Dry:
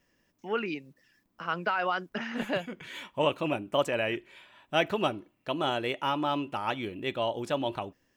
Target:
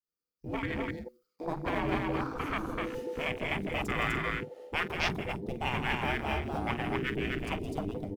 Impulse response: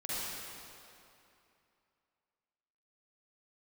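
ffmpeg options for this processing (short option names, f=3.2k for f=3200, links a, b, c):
-filter_complex "[0:a]aeval=exprs='if(lt(val(0),0),0.447*val(0),val(0))':c=same,aexciter=amount=2.9:drive=5.3:freq=4.3k,agate=range=-33dB:threshold=-57dB:ratio=3:detection=peak,asubboost=boost=7.5:cutoff=200,afreqshift=-500,afftfilt=real='re*lt(hypot(re,im),0.141)':imag='im*lt(hypot(re,im),0.141)':win_size=1024:overlap=0.75,asplit=2[a][b];[b]acrusher=bits=4:mode=log:mix=0:aa=0.000001,volume=-5.5dB[c];[a][c]amix=inputs=2:normalize=0,asplit=2[d][e];[e]adelay=47,volume=-12.5dB[f];[d][f]amix=inputs=2:normalize=0,aecho=1:1:166.2|250.7:0.355|0.794,afwtdn=0.02"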